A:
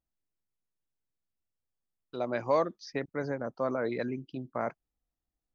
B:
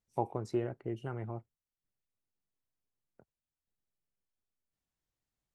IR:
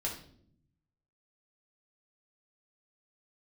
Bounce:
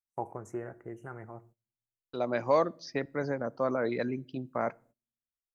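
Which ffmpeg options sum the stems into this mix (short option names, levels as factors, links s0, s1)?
-filter_complex "[0:a]volume=1.12,asplit=2[s0][s1];[s1]volume=0.0668[s2];[1:a]firequalizer=gain_entry='entry(140,0);entry(1700,10);entry(4200,-29);entry(6200,9)':delay=0.05:min_phase=1,volume=0.447,asplit=2[s3][s4];[s4]volume=0.178[s5];[2:a]atrim=start_sample=2205[s6];[s2][s5]amix=inputs=2:normalize=0[s7];[s7][s6]afir=irnorm=-1:irlink=0[s8];[s0][s3][s8]amix=inputs=3:normalize=0,agate=range=0.0708:threshold=0.00126:ratio=16:detection=peak"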